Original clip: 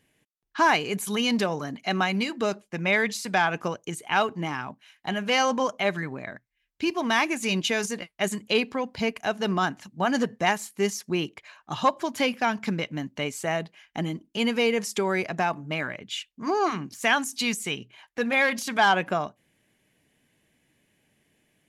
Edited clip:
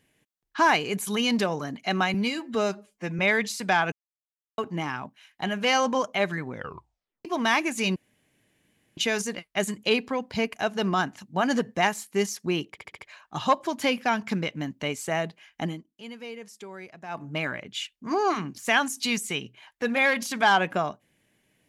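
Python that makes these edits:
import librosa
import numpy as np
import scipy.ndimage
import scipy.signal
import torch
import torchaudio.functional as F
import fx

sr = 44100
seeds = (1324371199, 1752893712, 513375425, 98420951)

y = fx.edit(x, sr, fx.stretch_span(start_s=2.14, length_s=0.7, factor=1.5),
    fx.silence(start_s=3.57, length_s=0.66),
    fx.tape_stop(start_s=6.11, length_s=0.79),
    fx.insert_room_tone(at_s=7.61, length_s=1.01),
    fx.stutter(start_s=11.35, slice_s=0.07, count=5),
    fx.fade_down_up(start_s=14.0, length_s=1.62, db=-16.0, fade_s=0.19), tone=tone)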